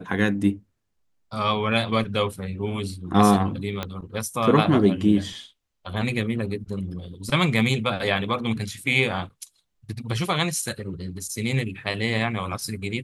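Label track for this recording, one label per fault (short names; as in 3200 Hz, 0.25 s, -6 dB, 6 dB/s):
3.830000	3.830000	pop -13 dBFS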